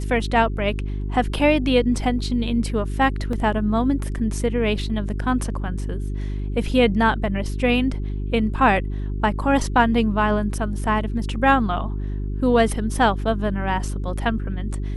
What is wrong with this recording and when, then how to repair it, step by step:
hum 50 Hz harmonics 8 -26 dBFS
3.33 s: dropout 2.4 ms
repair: de-hum 50 Hz, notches 8; interpolate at 3.33 s, 2.4 ms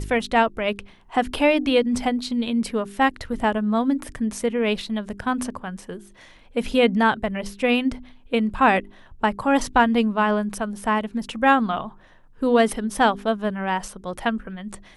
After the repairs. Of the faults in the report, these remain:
nothing left

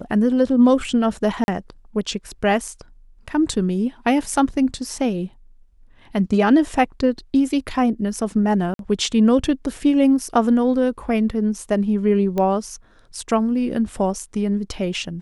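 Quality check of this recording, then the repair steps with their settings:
1.44–1.48 s: dropout 41 ms
8.74–8.79 s: dropout 52 ms
12.38 s: pop -12 dBFS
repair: de-click; interpolate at 1.44 s, 41 ms; interpolate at 8.74 s, 52 ms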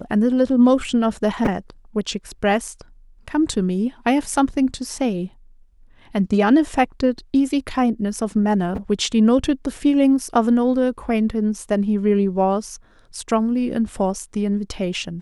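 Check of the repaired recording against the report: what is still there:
nothing left

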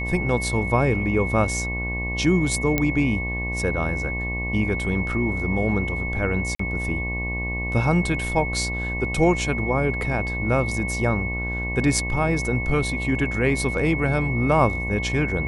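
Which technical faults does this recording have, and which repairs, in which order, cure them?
buzz 60 Hz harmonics 19 -29 dBFS
whine 2.2 kHz -28 dBFS
2.78 s: pop -7 dBFS
6.55–6.59 s: dropout 44 ms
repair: de-click; de-hum 60 Hz, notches 19; band-stop 2.2 kHz, Q 30; interpolate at 6.55 s, 44 ms

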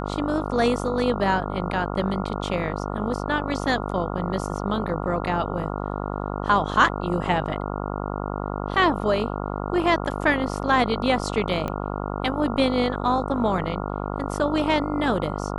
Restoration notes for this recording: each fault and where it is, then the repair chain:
buzz 50 Hz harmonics 28 -29 dBFS
11.68 s: pop -15 dBFS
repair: de-click; de-hum 50 Hz, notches 28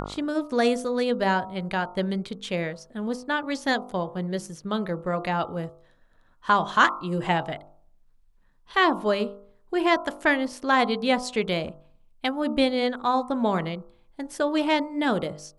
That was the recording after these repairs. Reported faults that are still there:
nothing left

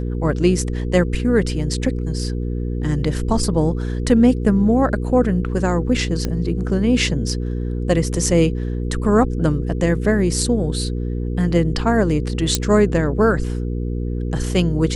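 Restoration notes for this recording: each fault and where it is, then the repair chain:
hum 60 Hz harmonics 8 -23 dBFS
6.25 s: pop -10 dBFS
12.55 s: pop -2 dBFS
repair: de-click; de-hum 60 Hz, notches 8

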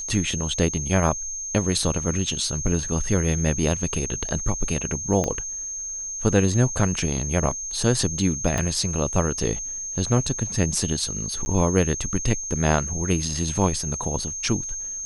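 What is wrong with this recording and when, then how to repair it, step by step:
whine 6.4 kHz -29 dBFS
5.24 s: pop -11 dBFS
8.58 s: pop -11 dBFS
11.45–11.46 s: dropout 10 ms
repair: de-click; band-stop 6.4 kHz, Q 30; interpolate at 11.45 s, 10 ms

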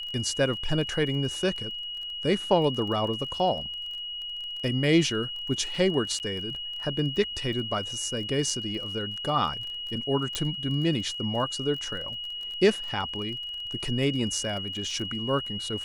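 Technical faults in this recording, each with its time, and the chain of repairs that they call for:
crackle 22 per s -35 dBFS
whine 2.9 kHz -33 dBFS
6.19–6.20 s: dropout 9.6 ms
10.35 s: pop -12 dBFS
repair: de-click; band-stop 2.9 kHz, Q 30; interpolate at 6.19 s, 9.6 ms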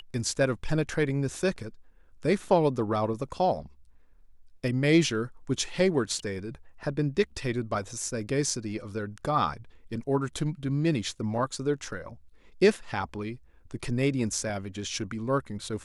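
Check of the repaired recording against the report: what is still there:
nothing left

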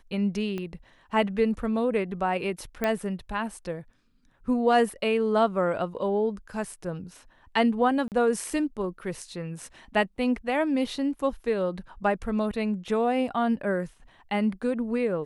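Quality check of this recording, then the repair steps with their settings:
0.58 s: pop -21 dBFS
2.84 s: pop -13 dBFS
8.08–8.12 s: dropout 38 ms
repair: de-click; interpolate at 8.08 s, 38 ms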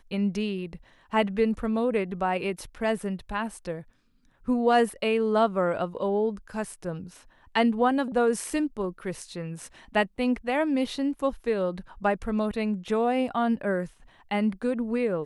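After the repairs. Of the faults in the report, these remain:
0.58 s: pop

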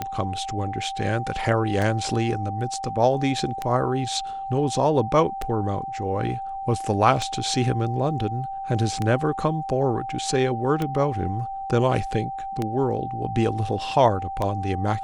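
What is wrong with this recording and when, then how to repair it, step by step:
tick 33 1/3 rpm -12 dBFS
whine 780 Hz -29 dBFS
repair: de-click; band-stop 780 Hz, Q 30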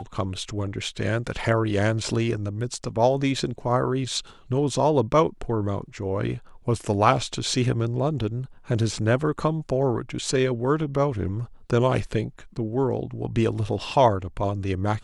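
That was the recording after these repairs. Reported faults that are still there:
nothing left

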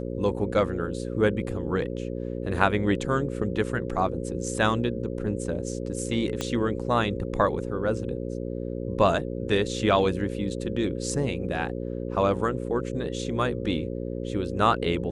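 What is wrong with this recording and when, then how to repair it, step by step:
buzz 60 Hz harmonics 9 -32 dBFS
6.41 s: pop -14 dBFS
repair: de-click; de-hum 60 Hz, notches 9

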